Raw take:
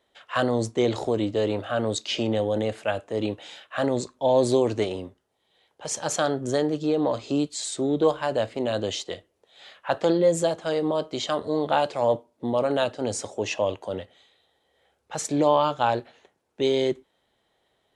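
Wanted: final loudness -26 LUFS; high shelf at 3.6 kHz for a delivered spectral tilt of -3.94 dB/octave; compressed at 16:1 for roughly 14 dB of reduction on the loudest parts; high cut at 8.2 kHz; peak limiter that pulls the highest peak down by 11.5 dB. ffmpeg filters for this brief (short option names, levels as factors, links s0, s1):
-af "lowpass=8200,highshelf=f=3600:g=4,acompressor=threshold=0.0355:ratio=16,volume=3.76,alimiter=limit=0.168:level=0:latency=1"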